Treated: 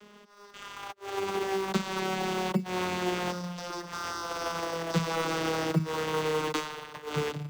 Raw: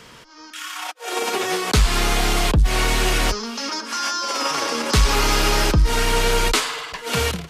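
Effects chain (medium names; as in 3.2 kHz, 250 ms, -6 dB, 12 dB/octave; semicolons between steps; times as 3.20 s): vocoder on a note that slides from G#3, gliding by -6 st; bass shelf 420 Hz -9.5 dB; in parallel at -7 dB: sample-and-hold 18×; on the sum: trim -5.5 dB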